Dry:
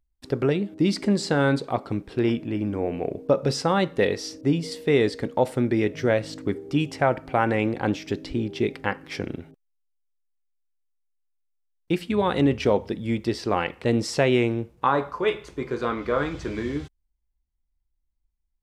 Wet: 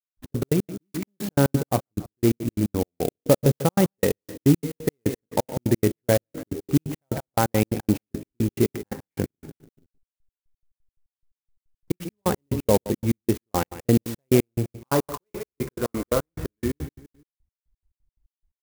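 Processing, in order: tone controls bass +5 dB, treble -12 dB; on a send: feedback echo 0.146 s, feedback 34%, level -15 dB; on the sum: dynamic EQ 1400 Hz, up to -5 dB, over -37 dBFS, Q 1.2; step gate "..x.x.x.x..x" 175 bpm -60 dB; clock jitter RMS 0.07 ms; gain +2.5 dB

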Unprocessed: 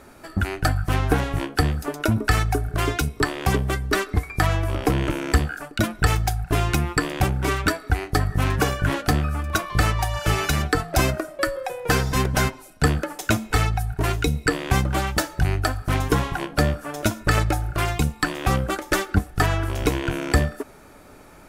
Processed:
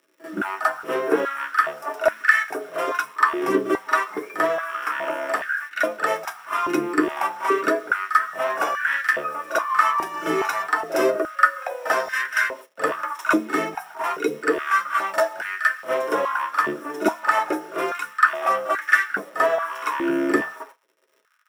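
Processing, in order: gate with hold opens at -33 dBFS; dynamic EQ 1000 Hz, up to +4 dB, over -36 dBFS, Q 1.3; bit-crush 7-bit; crackle 130/s -42 dBFS; pre-echo 43 ms -12 dB; reverb RT60 0.15 s, pre-delay 3 ms, DRR 1 dB; stepped high-pass 2.4 Hz 340–1700 Hz; gain -10 dB

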